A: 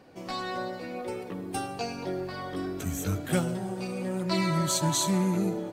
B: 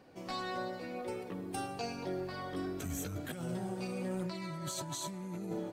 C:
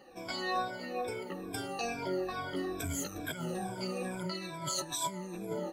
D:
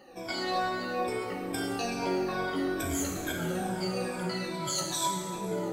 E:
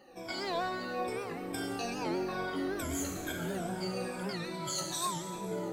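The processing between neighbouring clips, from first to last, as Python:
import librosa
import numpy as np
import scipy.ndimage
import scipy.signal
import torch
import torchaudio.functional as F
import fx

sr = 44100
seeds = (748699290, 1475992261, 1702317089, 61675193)

y1 = fx.over_compress(x, sr, threshold_db=-31.0, ratio=-1.0)
y1 = y1 * 10.0 ** (-7.0 / 20.0)
y2 = fx.spec_ripple(y1, sr, per_octave=1.7, drift_hz=-2.3, depth_db=20)
y2 = fx.peak_eq(y2, sr, hz=120.0, db=-6.5, octaves=2.5)
y2 = y2 * 10.0 ** (1.0 / 20.0)
y3 = fx.rev_plate(y2, sr, seeds[0], rt60_s=2.3, hf_ratio=0.65, predelay_ms=0, drr_db=0.0)
y3 = y3 * 10.0 ** (2.0 / 20.0)
y4 = fx.record_warp(y3, sr, rpm=78.0, depth_cents=160.0)
y4 = y4 * 10.0 ** (-4.0 / 20.0)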